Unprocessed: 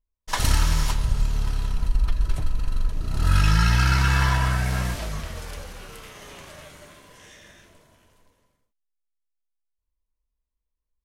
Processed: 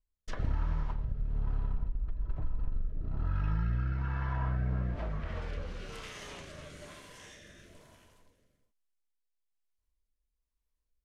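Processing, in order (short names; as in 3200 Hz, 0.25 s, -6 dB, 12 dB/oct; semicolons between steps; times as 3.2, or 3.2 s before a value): compressor 5:1, threshold -27 dBFS, peak gain reduction 12.5 dB; treble ducked by the level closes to 1200 Hz, closed at -27.5 dBFS; rotary speaker horn 1.1 Hz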